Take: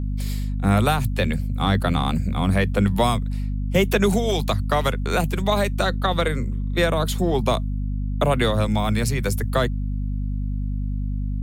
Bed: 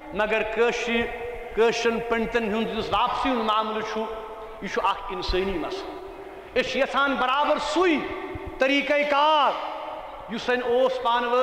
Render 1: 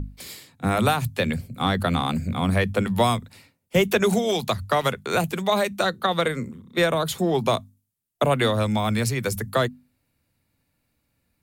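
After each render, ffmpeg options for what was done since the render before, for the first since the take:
-af "bandreject=f=50:t=h:w=6,bandreject=f=100:t=h:w=6,bandreject=f=150:t=h:w=6,bandreject=f=200:t=h:w=6,bandreject=f=250:t=h:w=6"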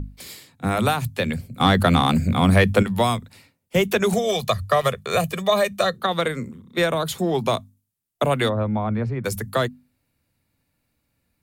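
-filter_complex "[0:a]asettb=1/sr,asplit=3[s0][s1][s2];[s0]atrim=end=1.604[s3];[s1]atrim=start=1.6:end=2.83,asetpts=PTS-STARTPTS,afade=t=in:d=0.004:c=qsin,afade=t=out:st=1.226:d=0.004:c=qsin,acontrast=62[s4];[s2]atrim=start=2.826[s5];[s3][s4]acrossfade=d=0.004:c1=hsin:c2=qsin[s6];[s6][s5]acrossfade=d=0.004:c1=qsin:c2=hsin,asettb=1/sr,asplit=3[s7][s8][s9];[s7]atrim=end=4.134[s10];[s8]atrim=start=4.13:end=5.98,asetpts=PTS-STARTPTS,afade=t=in:d=0.004:c=qsin,afade=t=out:st=1.846:d=0.004:c=qsin,aecho=1:1:1.7:0.65,atrim=end_sample=81585[s11];[s9]atrim=start=5.976[s12];[s10][s11]acrossfade=d=0.004:c1=hsin:c2=qsin[s13];[s13][s12]acrossfade=d=0.004:c1=qsin:c2=hsin,asplit=3[s14][s15][s16];[s14]afade=t=out:st=8.48:d=0.02[s17];[s15]lowpass=1200,afade=t=in:st=8.48:d=0.02,afade=t=out:st=9.24:d=0.02[s18];[s16]afade=t=in:st=9.24:d=0.02[s19];[s17][s18][s19]amix=inputs=3:normalize=0"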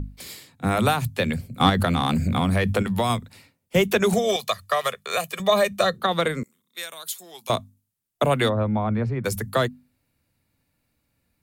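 -filter_complex "[0:a]asettb=1/sr,asplit=3[s0][s1][s2];[s0]atrim=end=1.694[s3];[s1]atrim=start=1.69:end=3.1,asetpts=PTS-STARTPTS,afade=t=in:d=0.004:c=qsin,afade=t=out:st=1.406:d=0.004:c=qsin,acompressor=threshold=0.141:ratio=6:attack=3.2:release=140:knee=1:detection=peak[s4];[s2]atrim=start=3.096[s5];[s3][s4]acrossfade=d=0.004:c1=hsin:c2=qsin[s6];[s6][s5]acrossfade=d=0.004:c1=qsin:c2=hsin,asettb=1/sr,asplit=3[s7][s8][s9];[s7]atrim=end=4.364[s10];[s8]atrim=start=4.36:end=5.4,asetpts=PTS-STARTPTS,afade=t=in:d=0.004:c=qsin,afade=t=out:st=1.036:d=0.004:c=qsin,highpass=f=960:p=1[s11];[s9]atrim=start=5.396[s12];[s10][s11]acrossfade=d=0.004:c1=hsin:c2=qsin[s13];[s13][s12]acrossfade=d=0.004:c1=qsin:c2=hsin,asettb=1/sr,asplit=3[s14][s15][s16];[s14]atrim=end=6.434[s17];[s15]atrim=start=6.43:end=7.5,asetpts=PTS-STARTPTS,afade=t=in:d=0.004:c=qsin,afade=t=out:st=1.066:d=0.004:c=qsin,aderivative[s18];[s16]atrim=start=7.496[s19];[s17][s18]acrossfade=d=0.004:c1=hsin:c2=qsin[s20];[s20][s19]acrossfade=d=0.004:c1=qsin:c2=hsin"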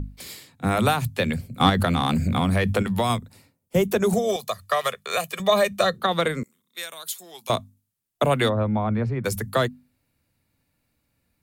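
-filter_complex "[0:a]asettb=1/sr,asplit=3[s0][s1][s2];[s0]atrim=end=3.184[s3];[s1]atrim=start=3.18:end=4.6,asetpts=PTS-STARTPTS,afade=t=in:d=0.004:c=qsin,afade=t=out:st=1.416:d=0.004:c=qsin,equalizer=f=2600:t=o:w=2.1:g=-8.5[s4];[s2]atrim=start=4.596[s5];[s3][s4]acrossfade=d=0.004:c1=hsin:c2=qsin[s6];[s6][s5]acrossfade=d=0.004:c1=qsin:c2=hsin"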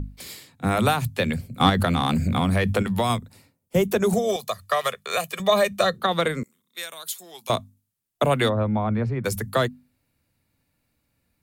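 -af anull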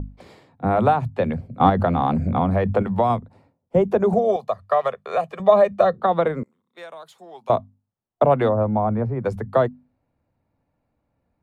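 -af "lowpass=f=770:t=q:w=1.6,crystalizer=i=7.5:c=0"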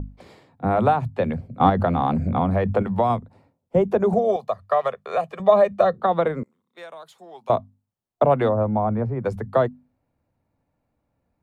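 -af "volume=0.891"

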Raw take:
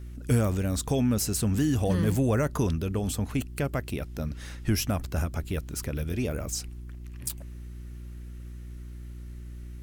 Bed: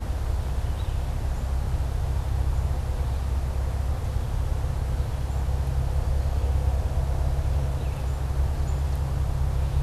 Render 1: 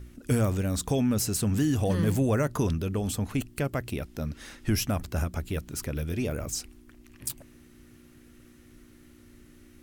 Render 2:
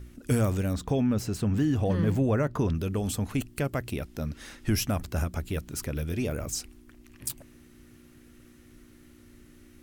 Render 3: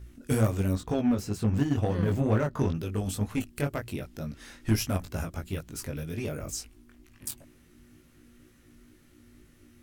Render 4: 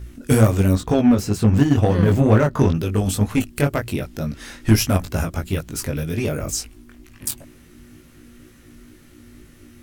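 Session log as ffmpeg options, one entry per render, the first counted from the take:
-af "bandreject=f=60:t=h:w=4,bandreject=f=120:t=h:w=4,bandreject=f=180:t=h:w=4"
-filter_complex "[0:a]asettb=1/sr,asplit=3[s0][s1][s2];[s0]atrim=end=0.734[s3];[s1]atrim=start=0.73:end=2.75,asetpts=PTS-STARTPTS,afade=t=in:d=0.004:c=qsin,afade=t=out:st=2.016:d=0.004:c=qsin,equalizer=f=11000:t=o:w=1.9:g=-14.5[s4];[s2]atrim=start=2.746[s5];[s3][s4]acrossfade=d=0.004:c1=hsin:c2=qsin[s6];[s6][s5]acrossfade=d=0.004:c1=qsin:c2=hsin"
-filter_complex "[0:a]flanger=delay=18:depth=3.6:speed=2.1,asplit=2[s0][s1];[s1]acrusher=bits=3:mix=0:aa=0.5,volume=0.355[s2];[s0][s2]amix=inputs=2:normalize=0"
-af "volume=3.35,alimiter=limit=0.708:level=0:latency=1"

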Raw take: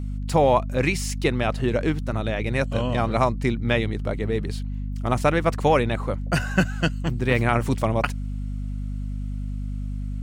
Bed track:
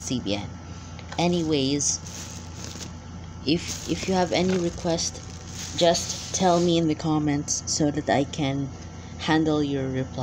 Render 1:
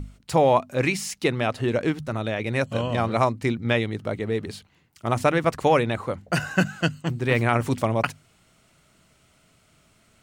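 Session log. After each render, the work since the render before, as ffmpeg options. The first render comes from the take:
-af "bandreject=f=50:t=h:w=6,bandreject=f=100:t=h:w=6,bandreject=f=150:t=h:w=6,bandreject=f=200:t=h:w=6,bandreject=f=250:t=h:w=6"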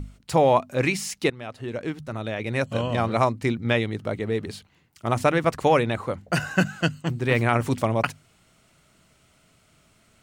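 -filter_complex "[0:a]asplit=2[s0][s1];[s0]atrim=end=1.3,asetpts=PTS-STARTPTS,afade=t=out:st=1.296:d=0.004:c=hsin:silence=0.16788[s2];[s1]atrim=start=1.3,asetpts=PTS-STARTPTS,afade=t=in:d=1.46:silence=0.16788[s3];[s2][s3]concat=n=2:v=0:a=1"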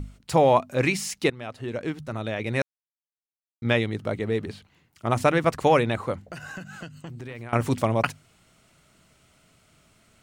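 -filter_complex "[0:a]asettb=1/sr,asplit=3[s0][s1][s2];[s0]atrim=end=4.454[s3];[s1]atrim=start=4.45:end=5.11,asetpts=PTS-STARTPTS,afade=t=in:d=0.004:c=qsin,afade=t=out:st=0.656:d=0.004:c=qsin,acrossover=split=3300[s4][s5];[s5]acompressor=threshold=0.00251:ratio=4:attack=1:release=60[s6];[s4][s6]amix=inputs=2:normalize=0[s7];[s2]atrim=start=5.106[s8];[s3][s7]acrossfade=d=0.004:c1=hsin:c2=qsin[s9];[s9][s8]acrossfade=d=0.004:c1=qsin:c2=hsin,asettb=1/sr,asplit=3[s10][s11][s12];[s10]atrim=end=6.284[s13];[s11]atrim=start=6.28:end=7.53,asetpts=PTS-STARTPTS,afade=t=in:d=0.004:c=qsin,afade=t=out:st=1.246:d=0.004:c=qsin,acompressor=threshold=0.02:ratio=12:attack=3.2:release=140:knee=1:detection=peak[s14];[s12]atrim=start=7.526[s15];[s13][s14]acrossfade=d=0.004:c1=hsin:c2=qsin[s16];[s16][s15]acrossfade=d=0.004:c1=qsin:c2=hsin,asplit=3[s17][s18][s19];[s17]atrim=end=2.62,asetpts=PTS-STARTPTS,afade=t=out:st=2.616:d=0.004:c=hsin[s20];[s18]atrim=start=2.62:end=3.62,asetpts=PTS-STARTPTS,volume=0[s21];[s19]atrim=start=3.62,asetpts=PTS-STARTPTS,afade=t=in:d=0.004:c=hsin[s22];[s20][s21][s22]concat=n=3:v=0:a=1"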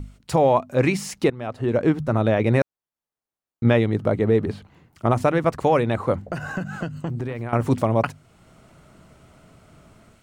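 -filter_complex "[0:a]acrossover=split=1400[s0][s1];[s0]dynaudnorm=f=210:g=3:m=3.76[s2];[s2][s1]amix=inputs=2:normalize=0,alimiter=limit=0.398:level=0:latency=1:release=442"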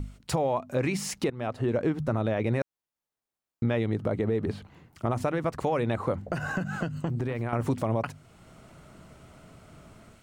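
-af "alimiter=limit=0.237:level=0:latency=1:release=87,acompressor=threshold=0.0447:ratio=2"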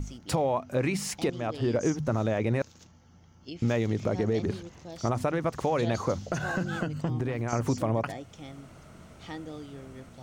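-filter_complex "[1:a]volume=0.119[s0];[0:a][s0]amix=inputs=2:normalize=0"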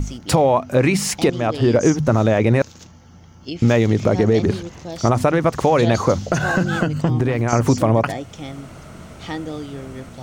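-af "volume=3.76"

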